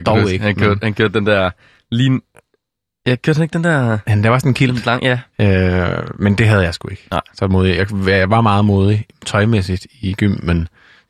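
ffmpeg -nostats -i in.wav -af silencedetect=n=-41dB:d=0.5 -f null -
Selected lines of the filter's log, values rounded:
silence_start: 2.40
silence_end: 3.06 | silence_duration: 0.67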